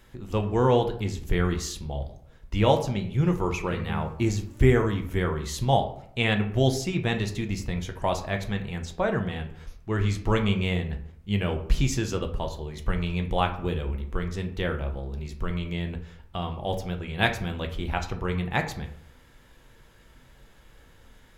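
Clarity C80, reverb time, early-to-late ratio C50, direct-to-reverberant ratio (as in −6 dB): 14.0 dB, 0.65 s, 11.0 dB, 4.5 dB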